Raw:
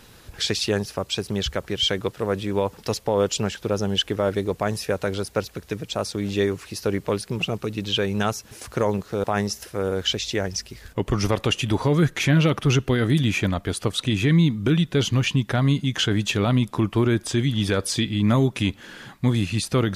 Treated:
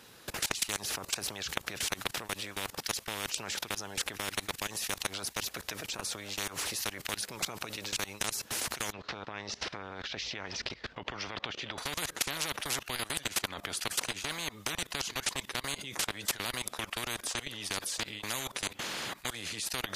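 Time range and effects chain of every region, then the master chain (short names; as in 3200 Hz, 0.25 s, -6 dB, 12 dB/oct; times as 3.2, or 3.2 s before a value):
8.92–11.78 LPF 4500 Hz 24 dB/oct + compressor 2:1, threshold -37 dBFS
whole clip: HPF 270 Hz 6 dB/oct; level quantiser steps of 24 dB; spectral compressor 10:1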